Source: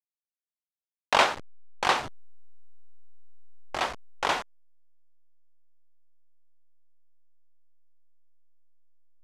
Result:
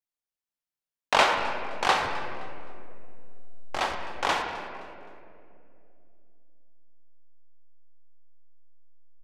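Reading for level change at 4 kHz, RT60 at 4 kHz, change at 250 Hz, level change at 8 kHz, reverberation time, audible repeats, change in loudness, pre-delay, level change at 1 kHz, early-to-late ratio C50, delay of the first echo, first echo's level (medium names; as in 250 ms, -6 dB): +1.0 dB, 1.5 s, +2.0 dB, 0.0 dB, 2.6 s, 1, 0.0 dB, 28 ms, +2.0 dB, 4.5 dB, 260 ms, -19.0 dB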